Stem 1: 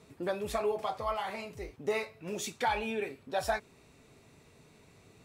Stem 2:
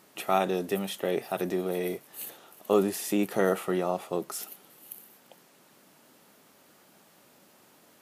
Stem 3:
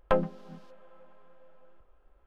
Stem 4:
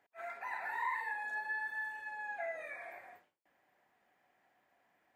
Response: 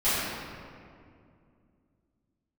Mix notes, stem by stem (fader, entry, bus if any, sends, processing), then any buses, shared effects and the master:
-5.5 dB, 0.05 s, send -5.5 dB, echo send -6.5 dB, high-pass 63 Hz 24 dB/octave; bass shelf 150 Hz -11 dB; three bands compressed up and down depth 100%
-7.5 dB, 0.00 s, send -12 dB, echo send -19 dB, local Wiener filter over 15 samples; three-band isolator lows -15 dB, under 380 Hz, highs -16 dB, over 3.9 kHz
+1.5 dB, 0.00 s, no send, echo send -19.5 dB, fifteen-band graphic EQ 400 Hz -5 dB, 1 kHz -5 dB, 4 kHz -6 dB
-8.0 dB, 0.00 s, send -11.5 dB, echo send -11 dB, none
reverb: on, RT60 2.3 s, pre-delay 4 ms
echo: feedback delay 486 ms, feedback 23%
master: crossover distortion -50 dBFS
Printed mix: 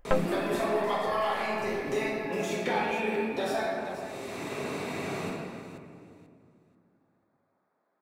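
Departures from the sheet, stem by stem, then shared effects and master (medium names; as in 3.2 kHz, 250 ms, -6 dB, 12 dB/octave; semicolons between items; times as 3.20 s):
stem 2 -7.5 dB -> -16.5 dB; master: missing crossover distortion -50 dBFS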